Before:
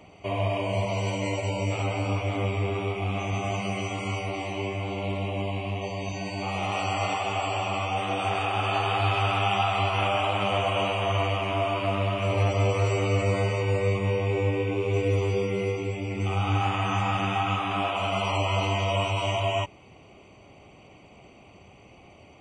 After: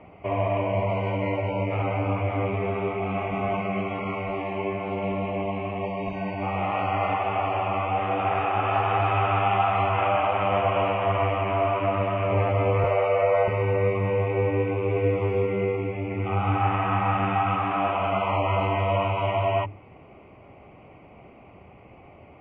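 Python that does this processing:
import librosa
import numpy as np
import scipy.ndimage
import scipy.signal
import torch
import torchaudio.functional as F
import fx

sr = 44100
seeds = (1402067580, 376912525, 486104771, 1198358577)

y = fx.comb(x, sr, ms=4.6, depth=0.48, at=(2.53, 6.34))
y = fx.low_shelf_res(y, sr, hz=400.0, db=-12.5, q=3.0, at=(12.84, 13.48))
y = scipy.signal.sosfilt(scipy.signal.butter(4, 2200.0, 'lowpass', fs=sr, output='sos'), y)
y = fx.hum_notches(y, sr, base_hz=50, count=8)
y = F.gain(torch.from_numpy(y), 3.5).numpy()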